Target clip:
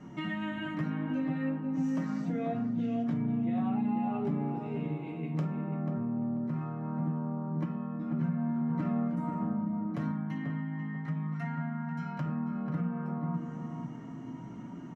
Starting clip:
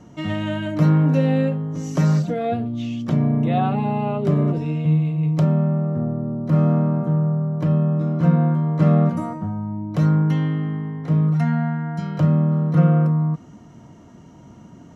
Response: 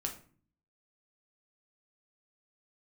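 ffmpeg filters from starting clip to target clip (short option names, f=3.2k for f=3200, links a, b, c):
-filter_complex "[1:a]atrim=start_sample=2205,afade=t=out:st=0.19:d=0.01,atrim=end_sample=8820[a];[0:a][a]afir=irnorm=-1:irlink=0,flanger=delay=4.9:depth=6.1:regen=-35:speed=0.27:shape=triangular,equalizer=f=250:t=o:w=1:g=11,equalizer=f=1k:t=o:w=1:g=6,equalizer=f=2k:t=o:w=1:g=10,acompressor=threshold=-27dB:ratio=4,asettb=1/sr,asplit=3[b][c][d];[b]atrim=end=10.114[e];[c]atrim=start=10.11:end=12.26,asetpts=PTS-STARTPTS,afade=t=in:d=0.004:c=qsin,afade=t=out:st=2.146:d=0.004:c=qsin,equalizer=f=370:t=o:w=1.1:g=-9.5[f];[d]atrim=start=12.256[g];[e][f]acrossfade=d=0.004:c1=hsin:c2=qsin[h];[h][g]acrossfade=d=0.004:c1=qsin:c2=hsin,asplit=2[i][j];[j]adelay=489,lowpass=f=1.3k:p=1,volume=-4dB,asplit=2[k][l];[l]adelay=489,lowpass=f=1.3k:p=1,volume=0.35,asplit=2[m][n];[n]adelay=489,lowpass=f=1.3k:p=1,volume=0.35,asplit=2[o][p];[p]adelay=489,lowpass=f=1.3k:p=1,volume=0.35[q];[i][k][m][o][q]amix=inputs=5:normalize=0,volume=-6.5dB"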